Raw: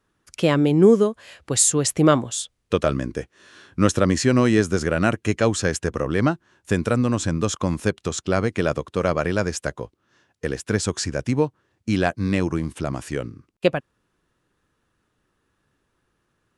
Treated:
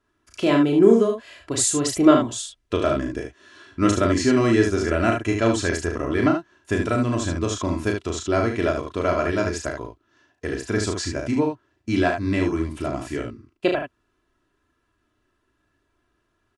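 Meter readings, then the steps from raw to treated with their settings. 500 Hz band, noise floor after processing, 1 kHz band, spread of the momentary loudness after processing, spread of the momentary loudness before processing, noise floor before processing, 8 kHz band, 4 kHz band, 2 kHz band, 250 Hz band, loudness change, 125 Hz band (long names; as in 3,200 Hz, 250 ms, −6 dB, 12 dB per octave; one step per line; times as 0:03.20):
0.0 dB, −71 dBFS, +1.0 dB, 14 LU, 13 LU, −73 dBFS, −3.5 dB, −1.0 dB, 0.0 dB, +1.0 dB, −0.5 dB, −3.5 dB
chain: high-shelf EQ 8,800 Hz −10 dB
comb filter 3 ms, depth 64%
on a send: ambience of single reflections 35 ms −4.5 dB, 74 ms −5.5 dB
on the sum: level −3 dB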